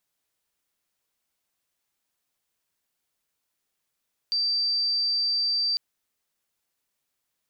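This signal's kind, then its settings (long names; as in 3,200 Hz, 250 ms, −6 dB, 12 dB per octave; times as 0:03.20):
tone sine 4,670 Hz −22 dBFS 1.45 s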